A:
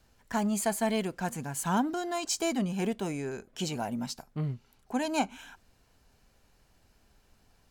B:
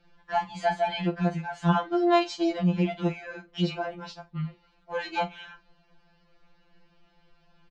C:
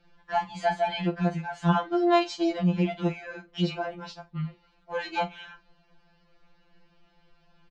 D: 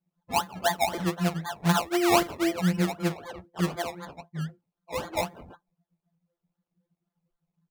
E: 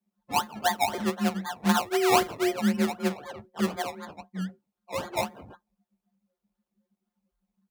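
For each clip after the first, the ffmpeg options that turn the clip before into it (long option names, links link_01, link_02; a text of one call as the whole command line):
ffmpeg -i in.wav -filter_complex "[0:a]lowpass=frequency=4100:width=0.5412,lowpass=frequency=4100:width=1.3066,asplit=2[link_01][link_02];[link_02]adelay=43,volume=-14dB[link_03];[link_01][link_03]amix=inputs=2:normalize=0,afftfilt=real='re*2.83*eq(mod(b,8),0)':imag='im*2.83*eq(mod(b,8),0)':win_size=2048:overlap=0.75,volume=6dB" out.wav
ffmpeg -i in.wav -af anull out.wav
ffmpeg -i in.wav -af "acrusher=samples=23:mix=1:aa=0.000001:lfo=1:lforange=13.8:lforate=3.9,highpass=frequency=62:poles=1,afftdn=noise_reduction=24:noise_floor=-50" out.wav
ffmpeg -i in.wav -af "afreqshift=28" out.wav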